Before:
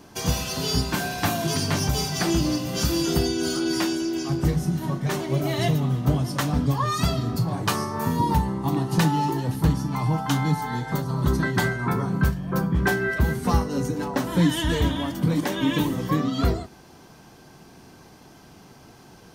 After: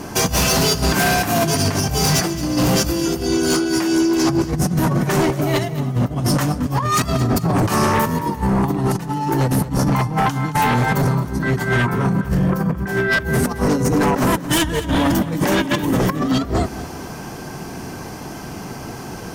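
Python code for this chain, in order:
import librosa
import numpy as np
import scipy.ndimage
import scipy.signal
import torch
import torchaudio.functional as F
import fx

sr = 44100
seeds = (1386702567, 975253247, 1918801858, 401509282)

y = fx.peak_eq(x, sr, hz=3700.0, db=-7.0, octaves=0.57)
y = fx.over_compress(y, sr, threshold_db=-28.0, ratio=-0.5)
y = fx.fold_sine(y, sr, drive_db=13, ceiling_db=-8.5)
y = fx.echo_feedback(y, sr, ms=220, feedback_pct=38, wet_db=-15)
y = F.gain(torch.from_numpy(y), -4.0).numpy()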